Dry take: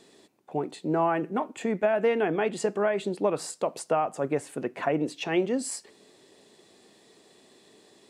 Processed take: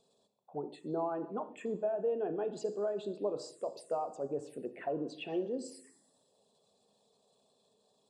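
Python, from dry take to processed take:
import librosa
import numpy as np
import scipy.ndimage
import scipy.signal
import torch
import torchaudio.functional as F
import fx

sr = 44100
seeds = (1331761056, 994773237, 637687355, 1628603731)

y = fx.envelope_sharpen(x, sr, power=1.5)
y = fx.rev_double_slope(y, sr, seeds[0], early_s=0.69, late_s=2.0, knee_db=-18, drr_db=8.5)
y = fx.env_phaser(y, sr, low_hz=310.0, high_hz=2100.0, full_db=-25.5)
y = F.gain(torch.from_numpy(y), -9.0).numpy()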